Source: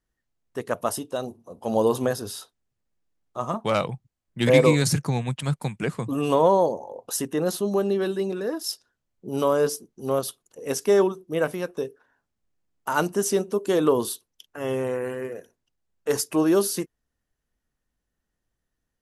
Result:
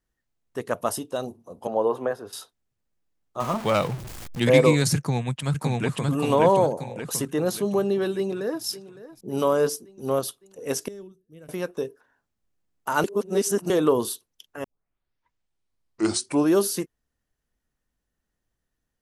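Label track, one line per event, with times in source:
1.670000	2.330000	three-way crossover with the lows and the highs turned down lows −13 dB, under 350 Hz, highs −20 dB, over 2,200 Hz
3.400000	4.400000	converter with a step at zero of −31 dBFS
4.960000	6.080000	delay throw 580 ms, feedback 45%, level −1 dB
8.170000	8.640000	delay throw 560 ms, feedback 60%, level −16 dB
10.880000	11.490000	guitar amp tone stack bass-middle-treble 10-0-1
13.040000	13.700000	reverse
14.640000	14.640000	tape start 1.87 s

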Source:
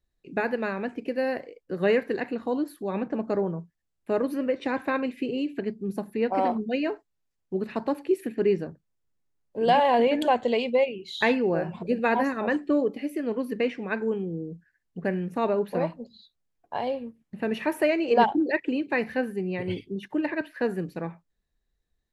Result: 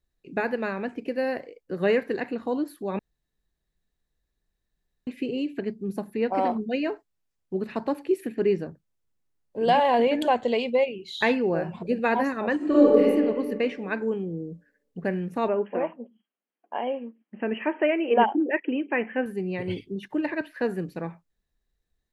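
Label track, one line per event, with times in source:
2.990000	5.070000	fill with room tone
12.560000	13.020000	thrown reverb, RT60 1.8 s, DRR −8.5 dB
15.480000	19.260000	linear-phase brick-wall band-pass 190–3,300 Hz

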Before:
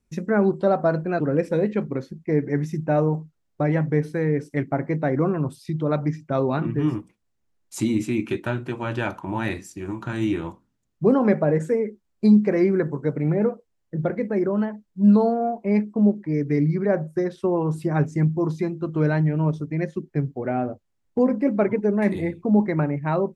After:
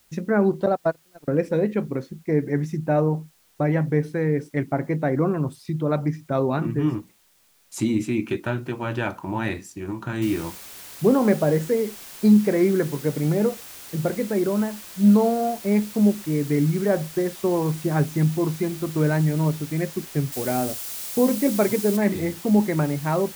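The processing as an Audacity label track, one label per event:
0.660000	1.280000	noise gate −19 dBFS, range −40 dB
10.220000	10.220000	noise floor change −61 dB −41 dB
20.320000	21.970000	high-shelf EQ 3,900 Hz +9.5 dB

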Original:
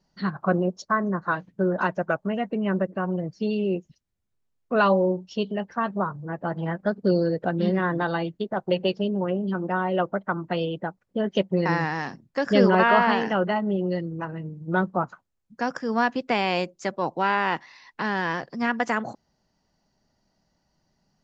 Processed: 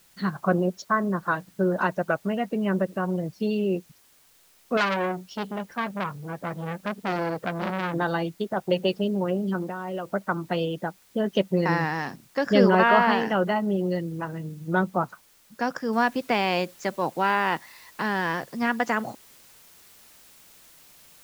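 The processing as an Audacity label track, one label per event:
4.770000	7.940000	saturating transformer saturates under 2,500 Hz
9.620000	10.110000	downward compressor 10 to 1, threshold −27 dBFS
15.930000	15.930000	noise floor change −59 dB −53 dB

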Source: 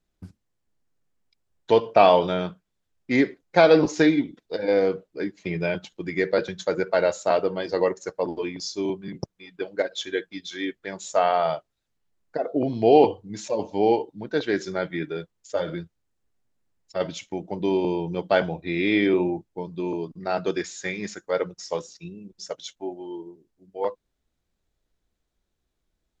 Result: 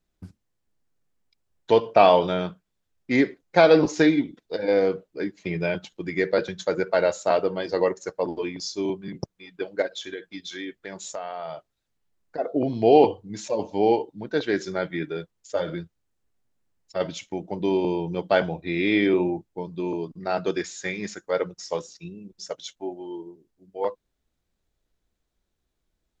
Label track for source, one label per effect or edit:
9.880000	12.380000	downward compressor, threshold −30 dBFS

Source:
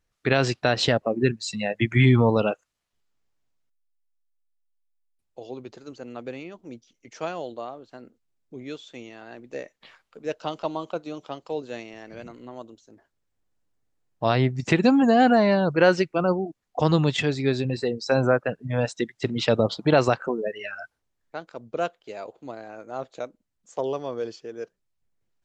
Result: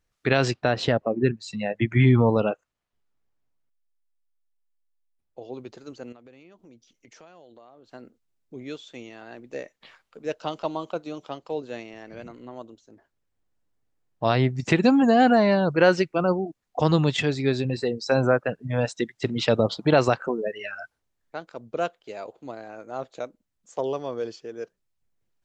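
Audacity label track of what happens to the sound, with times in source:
0.510000	5.540000	high-shelf EQ 3,000 Hz −10.5 dB
6.120000	7.900000	downward compressor 5 to 1, threshold −48 dBFS
11.370000	14.250000	high-shelf EQ 4,700 Hz −5 dB

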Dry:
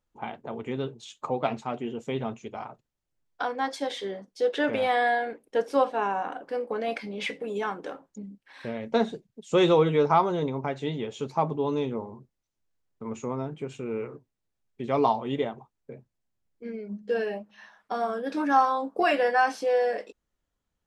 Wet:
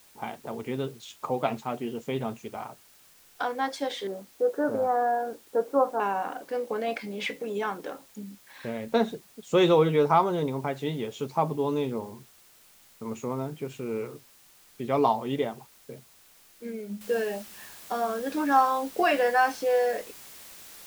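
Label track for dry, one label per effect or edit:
4.070000	6.000000	elliptic low-pass filter 1,400 Hz, stop band 60 dB
17.010000	17.010000	noise floor change −57 dB −47 dB

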